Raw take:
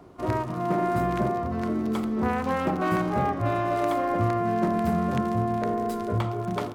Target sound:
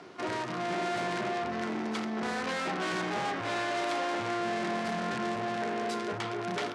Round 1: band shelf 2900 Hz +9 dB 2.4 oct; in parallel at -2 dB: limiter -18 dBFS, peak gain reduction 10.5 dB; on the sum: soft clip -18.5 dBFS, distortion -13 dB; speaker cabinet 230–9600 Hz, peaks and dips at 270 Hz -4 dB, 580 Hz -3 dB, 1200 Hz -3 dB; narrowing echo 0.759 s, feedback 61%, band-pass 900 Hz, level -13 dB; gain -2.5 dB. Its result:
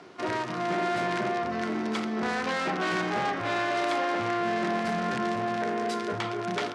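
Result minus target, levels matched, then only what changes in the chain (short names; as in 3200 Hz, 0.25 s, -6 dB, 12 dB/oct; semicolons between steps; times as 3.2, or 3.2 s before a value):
soft clip: distortion -5 dB
change: soft clip -25 dBFS, distortion -8 dB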